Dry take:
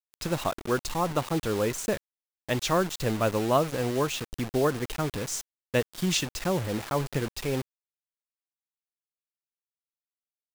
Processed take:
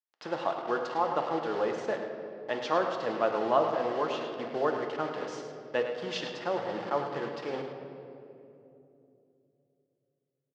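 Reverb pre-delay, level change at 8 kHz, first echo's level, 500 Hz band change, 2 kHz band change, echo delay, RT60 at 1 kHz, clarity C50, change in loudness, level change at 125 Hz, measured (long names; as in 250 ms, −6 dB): 4 ms, below −15 dB, −9.5 dB, −1.0 dB, −3.0 dB, 106 ms, 2.5 s, 4.5 dB, −3.0 dB, −16.0 dB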